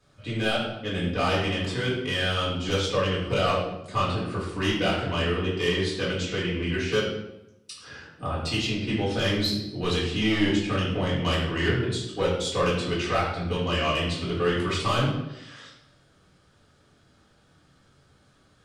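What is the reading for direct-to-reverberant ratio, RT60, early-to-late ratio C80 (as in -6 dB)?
-7.5 dB, 0.90 s, 5.5 dB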